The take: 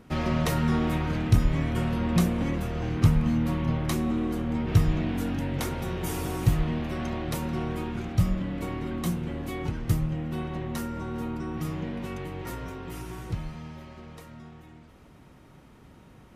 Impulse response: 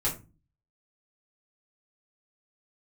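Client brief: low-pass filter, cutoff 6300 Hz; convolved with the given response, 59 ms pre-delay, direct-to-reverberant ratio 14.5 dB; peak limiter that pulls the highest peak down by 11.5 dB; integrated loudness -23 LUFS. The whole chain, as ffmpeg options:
-filter_complex "[0:a]lowpass=6.3k,alimiter=limit=-20dB:level=0:latency=1,asplit=2[a][b];[1:a]atrim=start_sample=2205,adelay=59[c];[b][c]afir=irnorm=-1:irlink=0,volume=-22dB[d];[a][d]amix=inputs=2:normalize=0,volume=7dB"

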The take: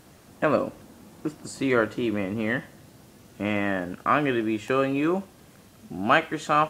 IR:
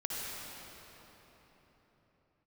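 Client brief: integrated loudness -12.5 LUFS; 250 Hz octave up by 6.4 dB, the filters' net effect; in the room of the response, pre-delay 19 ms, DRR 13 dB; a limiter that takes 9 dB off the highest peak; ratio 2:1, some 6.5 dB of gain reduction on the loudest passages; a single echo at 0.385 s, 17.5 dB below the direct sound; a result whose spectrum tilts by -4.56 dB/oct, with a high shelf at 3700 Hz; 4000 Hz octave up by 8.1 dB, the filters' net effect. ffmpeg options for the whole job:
-filter_complex "[0:a]equalizer=f=250:t=o:g=8,highshelf=f=3.7k:g=9,equalizer=f=4k:t=o:g=6,acompressor=threshold=-25dB:ratio=2,alimiter=limit=-19.5dB:level=0:latency=1,aecho=1:1:385:0.133,asplit=2[a][b];[1:a]atrim=start_sample=2205,adelay=19[c];[b][c]afir=irnorm=-1:irlink=0,volume=-17dB[d];[a][d]amix=inputs=2:normalize=0,volume=17.5dB"

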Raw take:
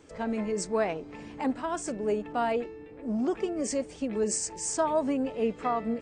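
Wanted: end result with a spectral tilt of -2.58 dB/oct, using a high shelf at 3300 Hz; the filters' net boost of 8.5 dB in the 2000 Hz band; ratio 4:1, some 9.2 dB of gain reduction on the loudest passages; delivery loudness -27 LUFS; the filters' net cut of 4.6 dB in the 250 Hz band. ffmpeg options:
-af "equalizer=f=250:t=o:g=-5.5,equalizer=f=2k:t=o:g=9,highshelf=f=3.3k:g=5.5,acompressor=threshold=-32dB:ratio=4,volume=8.5dB"

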